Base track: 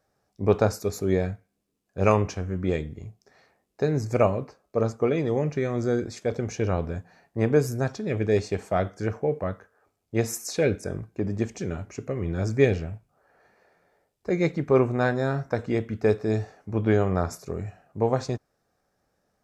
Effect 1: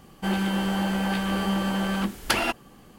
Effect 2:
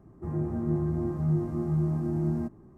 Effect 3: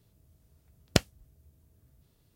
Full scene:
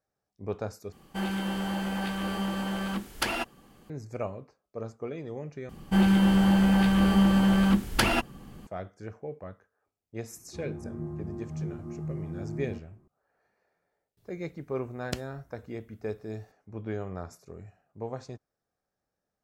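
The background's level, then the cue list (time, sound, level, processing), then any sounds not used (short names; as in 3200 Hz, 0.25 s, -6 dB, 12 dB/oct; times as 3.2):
base track -13 dB
0.92 replace with 1 -5.5 dB
5.69 replace with 1 -1 dB + tone controls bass +9 dB, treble -1 dB
10.31 add 2 -9 dB
14.17 add 3 -13 dB + maximiser +10.5 dB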